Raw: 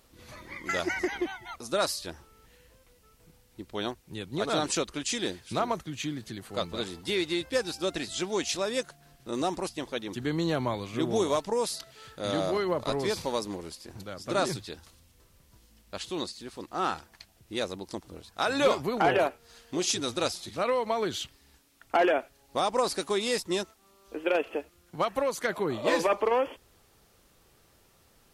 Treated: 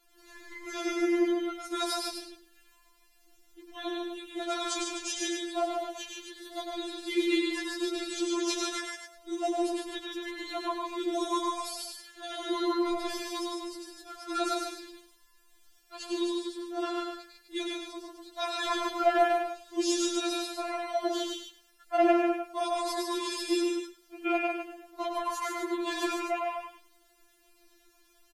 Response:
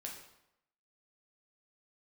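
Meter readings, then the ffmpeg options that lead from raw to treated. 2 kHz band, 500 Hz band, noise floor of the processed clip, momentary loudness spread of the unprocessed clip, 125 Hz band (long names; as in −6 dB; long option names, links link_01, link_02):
−3.0 dB, −3.0 dB, −64 dBFS, 15 LU, below −30 dB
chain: -filter_complex "[0:a]bandreject=frequency=60:width_type=h:width=6,bandreject=frequency=120:width_type=h:width=6,bandreject=frequency=180:width_type=h:width=6,bandreject=frequency=240:width_type=h:width=6,bandreject=frequency=300:width_type=h:width=6,bandreject=frequency=360:width_type=h:width=6,asplit=2[link_01][link_02];[link_02]aecho=0:1:104|208|312:0.631|0.114|0.0204[link_03];[link_01][link_03]amix=inputs=2:normalize=0,afreqshift=-18,asplit=2[link_04][link_05];[link_05]aecho=0:1:147:0.631[link_06];[link_04][link_06]amix=inputs=2:normalize=0,afftfilt=real='re*4*eq(mod(b,16),0)':imag='im*4*eq(mod(b,16),0)':win_size=2048:overlap=0.75,volume=-2dB"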